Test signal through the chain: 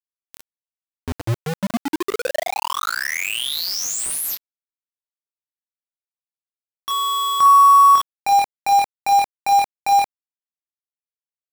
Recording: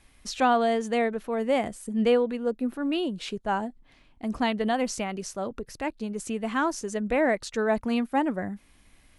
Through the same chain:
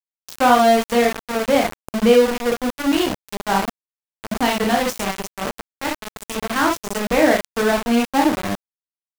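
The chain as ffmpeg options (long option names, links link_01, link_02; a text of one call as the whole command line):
ffmpeg -i in.wav -af "aecho=1:1:25|51|61:0.596|0.501|0.562,aeval=exprs='val(0)*gte(abs(val(0)),0.0596)':channel_layout=same,volume=5.5dB" out.wav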